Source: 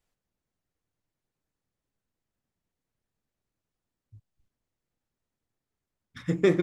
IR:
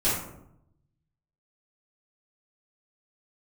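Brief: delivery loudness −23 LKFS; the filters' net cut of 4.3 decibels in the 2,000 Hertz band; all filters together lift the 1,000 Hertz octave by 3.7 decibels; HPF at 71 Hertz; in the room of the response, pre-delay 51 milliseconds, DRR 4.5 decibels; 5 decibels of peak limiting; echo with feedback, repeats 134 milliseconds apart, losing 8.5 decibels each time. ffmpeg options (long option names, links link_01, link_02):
-filter_complex "[0:a]highpass=71,equalizer=frequency=1000:width_type=o:gain=7.5,equalizer=frequency=2000:width_type=o:gain=-7,alimiter=limit=-15dB:level=0:latency=1,aecho=1:1:134|268|402|536:0.376|0.143|0.0543|0.0206,asplit=2[link_01][link_02];[1:a]atrim=start_sample=2205,adelay=51[link_03];[link_02][link_03]afir=irnorm=-1:irlink=0,volume=-16.5dB[link_04];[link_01][link_04]amix=inputs=2:normalize=0,volume=5.5dB"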